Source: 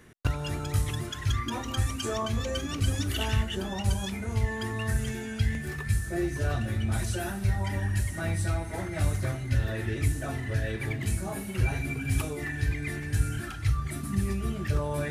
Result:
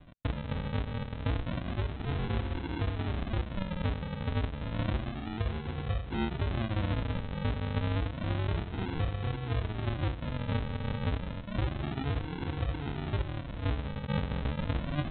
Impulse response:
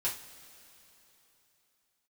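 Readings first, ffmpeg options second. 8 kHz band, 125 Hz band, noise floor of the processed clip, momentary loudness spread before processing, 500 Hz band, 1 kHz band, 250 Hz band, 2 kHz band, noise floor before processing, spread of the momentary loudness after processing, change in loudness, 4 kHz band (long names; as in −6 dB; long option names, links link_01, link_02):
below −40 dB, −4.0 dB, −40 dBFS, 3 LU, −3.5 dB, −2.0 dB, −2.0 dB, −6.5 dB, −37 dBFS, 3 LU, −4.0 dB, −6.0 dB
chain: -af "alimiter=limit=-21.5dB:level=0:latency=1:release=386,aresample=8000,acrusher=samples=18:mix=1:aa=0.000001:lfo=1:lforange=10.8:lforate=0.3,aresample=44100"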